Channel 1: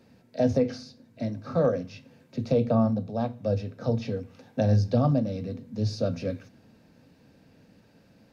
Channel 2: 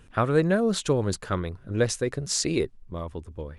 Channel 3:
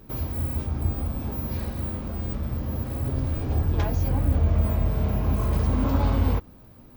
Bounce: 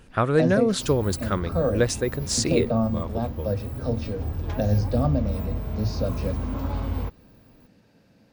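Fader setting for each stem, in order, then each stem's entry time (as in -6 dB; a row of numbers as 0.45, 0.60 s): -0.5, +1.5, -6.0 dB; 0.00, 0.00, 0.70 s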